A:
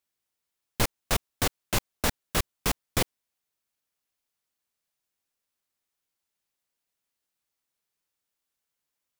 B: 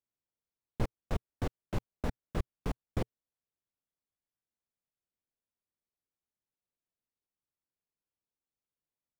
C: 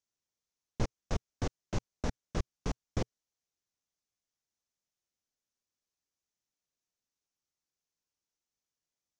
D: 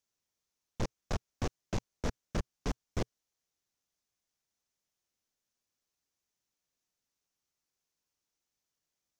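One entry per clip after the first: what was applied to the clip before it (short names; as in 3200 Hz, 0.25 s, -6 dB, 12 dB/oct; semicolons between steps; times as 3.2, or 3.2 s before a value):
EQ curve 120 Hz 0 dB, 440 Hz -3 dB, 16000 Hz -28 dB; gain -3 dB
synth low-pass 6200 Hz, resonance Q 3.5
hard clip -31 dBFS, distortion -8 dB; gain +3.5 dB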